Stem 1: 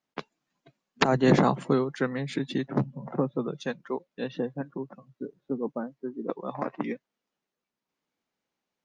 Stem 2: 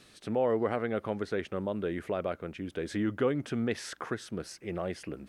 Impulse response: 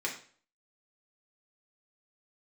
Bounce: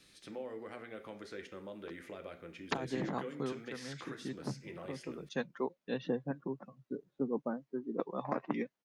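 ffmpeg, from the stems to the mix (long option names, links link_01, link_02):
-filter_complex "[0:a]adelay=1700,volume=-4dB[link_01];[1:a]equalizer=frequency=730:width=0.34:gain=-9,acrossover=split=280|5000[link_02][link_03][link_04];[link_02]acompressor=threshold=-54dB:ratio=4[link_05];[link_03]acompressor=threshold=-41dB:ratio=4[link_06];[link_04]acompressor=threshold=-55dB:ratio=4[link_07];[link_05][link_06][link_07]amix=inputs=3:normalize=0,volume=-6.5dB,asplit=3[link_08][link_09][link_10];[link_09]volume=-3.5dB[link_11];[link_10]apad=whole_len=469282[link_12];[link_01][link_12]sidechaincompress=threshold=-59dB:ratio=12:attack=5.1:release=255[link_13];[2:a]atrim=start_sample=2205[link_14];[link_11][link_14]afir=irnorm=-1:irlink=0[link_15];[link_13][link_08][link_15]amix=inputs=3:normalize=0"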